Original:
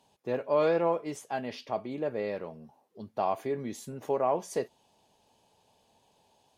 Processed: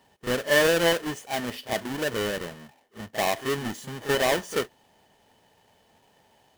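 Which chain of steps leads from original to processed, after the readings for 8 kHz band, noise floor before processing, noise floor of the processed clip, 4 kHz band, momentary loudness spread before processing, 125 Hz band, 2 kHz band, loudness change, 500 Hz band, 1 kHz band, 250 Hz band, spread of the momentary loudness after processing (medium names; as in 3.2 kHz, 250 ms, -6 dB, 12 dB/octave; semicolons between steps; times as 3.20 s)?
+13.5 dB, -69 dBFS, -63 dBFS, +19.0 dB, 14 LU, +6.5 dB, +16.5 dB, +5.5 dB, +3.5 dB, +2.0 dB, +5.0 dB, 14 LU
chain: square wave that keeps the level; small resonant body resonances 1.8/3 kHz, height 12 dB, ringing for 35 ms; pre-echo 36 ms -12 dB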